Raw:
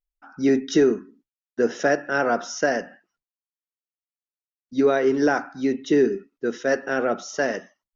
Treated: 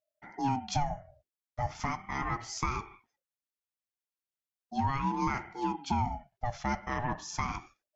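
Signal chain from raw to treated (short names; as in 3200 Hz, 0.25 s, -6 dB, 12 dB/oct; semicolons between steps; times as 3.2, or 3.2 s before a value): compressor 2:1, threshold -31 dBFS, peak gain reduction 10 dB; 0.83–2.63 notch comb 190 Hz; ring modulator with a swept carrier 480 Hz, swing 30%, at 0.37 Hz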